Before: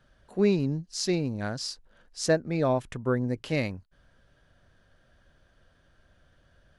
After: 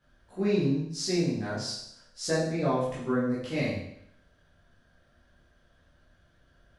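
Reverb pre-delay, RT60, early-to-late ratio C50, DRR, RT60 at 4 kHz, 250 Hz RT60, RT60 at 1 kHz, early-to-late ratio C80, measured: 12 ms, 0.75 s, 2.5 dB, −8.5 dB, 0.70 s, 0.75 s, 0.75 s, 5.5 dB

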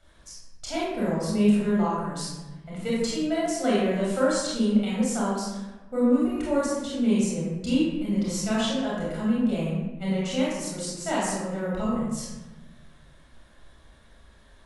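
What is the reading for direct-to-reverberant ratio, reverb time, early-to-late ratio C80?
−6.5 dB, 1.1 s, 2.0 dB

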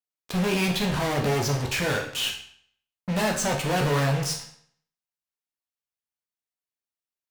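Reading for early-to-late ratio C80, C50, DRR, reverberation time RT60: 10.5 dB, 7.0 dB, −0.5 dB, 0.60 s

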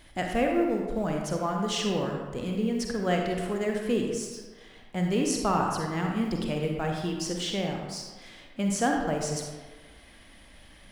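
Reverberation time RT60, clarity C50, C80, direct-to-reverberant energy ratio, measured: 1.4 s, 2.0 dB, 4.5 dB, 1.0 dB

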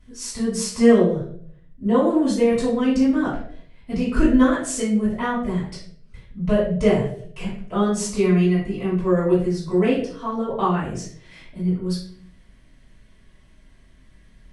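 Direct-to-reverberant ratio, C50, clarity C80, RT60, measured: −11.0 dB, 4.0 dB, 8.0 dB, 0.60 s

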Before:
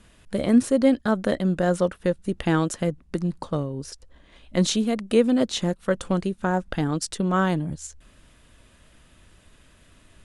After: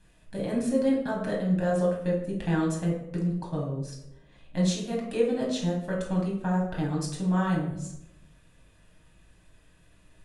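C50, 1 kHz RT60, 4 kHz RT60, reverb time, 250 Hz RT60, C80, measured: 4.5 dB, 0.75 s, 0.50 s, 0.85 s, 1.0 s, 8.0 dB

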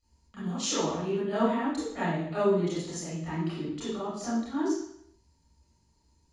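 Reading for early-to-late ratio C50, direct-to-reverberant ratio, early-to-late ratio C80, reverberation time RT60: −2.0 dB, −12.0 dB, 2.5 dB, 0.70 s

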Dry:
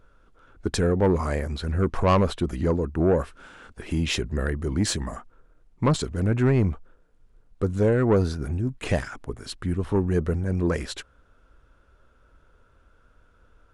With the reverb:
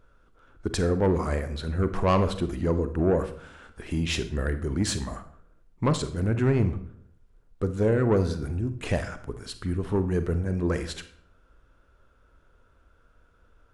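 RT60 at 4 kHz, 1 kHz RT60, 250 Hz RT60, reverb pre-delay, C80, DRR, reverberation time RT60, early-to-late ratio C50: 0.45 s, 0.55 s, 0.70 s, 34 ms, 16.0 dB, 10.0 dB, 0.60 s, 12.0 dB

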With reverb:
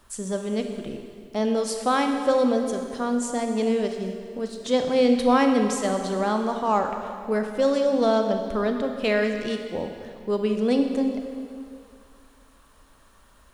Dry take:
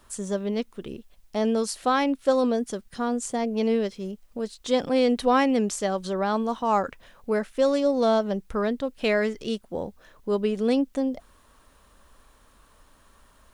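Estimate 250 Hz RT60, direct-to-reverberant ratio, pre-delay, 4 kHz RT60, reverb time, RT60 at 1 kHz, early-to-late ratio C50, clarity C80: 2.3 s, 4.5 dB, 25 ms, 2.1 s, 2.4 s, 2.4 s, 5.5 dB, 6.5 dB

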